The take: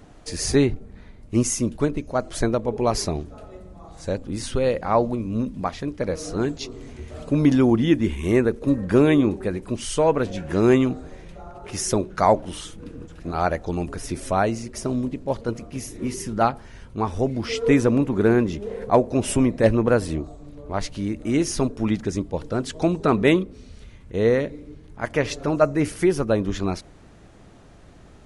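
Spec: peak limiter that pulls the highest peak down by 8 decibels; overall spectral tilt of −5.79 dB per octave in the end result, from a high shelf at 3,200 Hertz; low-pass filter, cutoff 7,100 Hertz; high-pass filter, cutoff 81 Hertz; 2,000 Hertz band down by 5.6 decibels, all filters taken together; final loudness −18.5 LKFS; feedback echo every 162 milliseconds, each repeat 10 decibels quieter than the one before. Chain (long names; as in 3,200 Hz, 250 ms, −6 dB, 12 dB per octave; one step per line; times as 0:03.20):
high-pass filter 81 Hz
low-pass filter 7,100 Hz
parametric band 2,000 Hz −8.5 dB
high-shelf EQ 3,200 Hz +3.5 dB
brickwall limiter −12.5 dBFS
repeating echo 162 ms, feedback 32%, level −10 dB
level +6.5 dB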